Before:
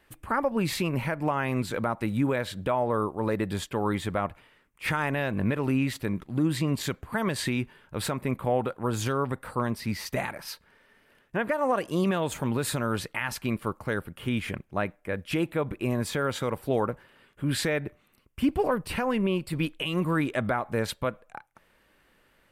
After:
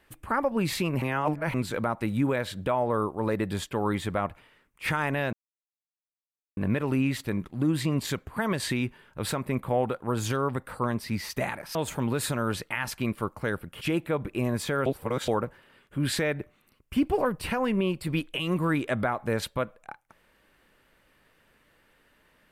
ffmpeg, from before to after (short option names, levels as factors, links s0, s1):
-filter_complex "[0:a]asplit=8[s0][s1][s2][s3][s4][s5][s6][s7];[s0]atrim=end=1.022[s8];[s1]atrim=start=1.018:end=1.542,asetpts=PTS-STARTPTS,areverse[s9];[s2]atrim=start=1.538:end=5.33,asetpts=PTS-STARTPTS,afade=t=out:st=3.788:d=0.004:c=hsin,apad=pad_dur=1.24[s10];[s3]atrim=start=5.33:end=10.512,asetpts=PTS-STARTPTS,afade=t=in:d=0.004:c=hsin[s11];[s4]atrim=start=12.188:end=14.252[s12];[s5]atrim=start=15.268:end=16.322[s13];[s6]atrim=start=16.318:end=16.742,asetpts=PTS-STARTPTS,areverse[s14];[s7]atrim=start=16.738[s15];[s8][s9]acrossfade=d=0.004:c1=hsin:c2=hsin[s16];[s10][s11]concat=n=2:v=0:a=1[s17];[s16][s17]acrossfade=d=0.004:c1=hsin:c2=hsin[s18];[s18][s12]acrossfade=d=0.004:c1=hsin:c2=hsin[s19];[s19][s13]acrossfade=d=0.004:c1=hsin:c2=hsin[s20];[s20][s14]acrossfade=d=0.004:c1=hsin:c2=hsin[s21];[s21][s15]acrossfade=d=0.004:c1=hsin:c2=hsin"